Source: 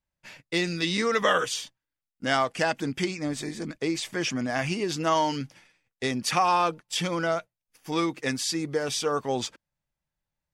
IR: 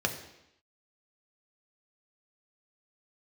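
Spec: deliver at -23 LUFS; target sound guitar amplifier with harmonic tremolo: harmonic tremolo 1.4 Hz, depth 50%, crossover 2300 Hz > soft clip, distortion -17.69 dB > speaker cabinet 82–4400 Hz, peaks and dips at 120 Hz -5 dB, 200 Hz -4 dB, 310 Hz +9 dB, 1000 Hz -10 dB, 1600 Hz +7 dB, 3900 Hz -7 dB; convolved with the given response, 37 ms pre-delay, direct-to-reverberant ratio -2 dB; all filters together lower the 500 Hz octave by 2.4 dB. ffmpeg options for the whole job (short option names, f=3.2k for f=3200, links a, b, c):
-filter_complex "[0:a]equalizer=f=500:t=o:g=-5,asplit=2[a][b];[1:a]atrim=start_sample=2205,adelay=37[c];[b][c]afir=irnorm=-1:irlink=0,volume=-6.5dB[d];[a][d]amix=inputs=2:normalize=0,acrossover=split=2300[e][f];[e]aeval=exprs='val(0)*(1-0.5/2+0.5/2*cos(2*PI*1.4*n/s))':c=same[g];[f]aeval=exprs='val(0)*(1-0.5/2-0.5/2*cos(2*PI*1.4*n/s))':c=same[h];[g][h]amix=inputs=2:normalize=0,asoftclip=threshold=-17dB,highpass=82,equalizer=f=120:t=q:w=4:g=-5,equalizer=f=200:t=q:w=4:g=-4,equalizer=f=310:t=q:w=4:g=9,equalizer=f=1k:t=q:w=4:g=-10,equalizer=f=1.6k:t=q:w=4:g=7,equalizer=f=3.9k:t=q:w=4:g=-7,lowpass=f=4.4k:w=0.5412,lowpass=f=4.4k:w=1.3066,volume=4dB"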